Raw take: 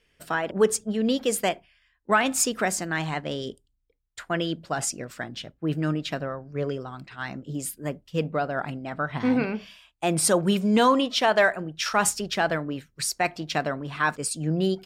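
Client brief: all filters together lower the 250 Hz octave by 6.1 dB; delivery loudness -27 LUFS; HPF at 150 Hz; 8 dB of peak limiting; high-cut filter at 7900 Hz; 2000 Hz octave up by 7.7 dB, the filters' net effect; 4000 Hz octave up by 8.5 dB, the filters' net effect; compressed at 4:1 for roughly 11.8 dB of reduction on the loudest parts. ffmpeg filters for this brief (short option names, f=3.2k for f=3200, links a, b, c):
-af "highpass=150,lowpass=7.9k,equalizer=f=250:t=o:g=-7,equalizer=f=2k:t=o:g=8.5,equalizer=f=4k:t=o:g=8.5,acompressor=threshold=-26dB:ratio=4,volume=5dB,alimiter=limit=-14.5dB:level=0:latency=1"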